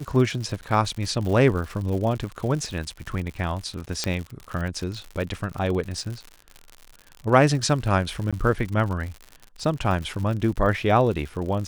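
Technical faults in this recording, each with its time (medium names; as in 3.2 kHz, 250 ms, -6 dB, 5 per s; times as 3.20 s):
crackle 110 per s -31 dBFS
0.61–0.62 s: dropout 9.8 ms
4.04 s: pop -10 dBFS
8.31–8.33 s: dropout 16 ms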